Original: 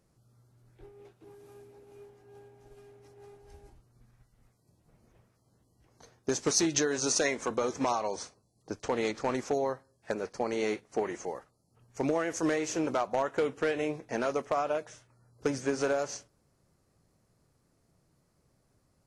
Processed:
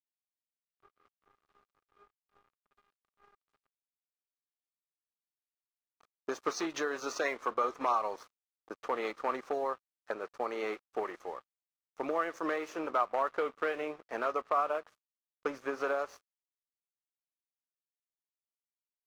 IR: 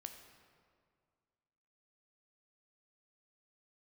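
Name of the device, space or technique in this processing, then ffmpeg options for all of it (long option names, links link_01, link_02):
pocket radio on a weak battery: -filter_complex "[0:a]asettb=1/sr,asplit=3[link_01][link_02][link_03];[link_01]atrim=end=0.914[link_04];[link_02]atrim=start=0.91:end=1.69,asetpts=PTS-STARTPTS,afade=type=in:duration=0.004:curve=qsin,afade=type=out:start_time=0.776:duration=0.004:curve=qsin,lowshelf=frequency=140:gain=-5.5[link_05];[link_03]atrim=start=1.686[link_06];[link_04][link_05]acrossfade=duration=0.004:curve1=hsin:curve2=qsin[link_07];[link_07][link_06]acrossfade=duration=0.004:curve1=qsin:curve2=hsin,highpass=380,lowpass=3200,aeval=exprs='sgn(val(0))*max(abs(val(0))-0.00237,0)':channel_layout=same,equalizer=frequency=1200:width_type=o:width=0.35:gain=11,volume=-2.5dB"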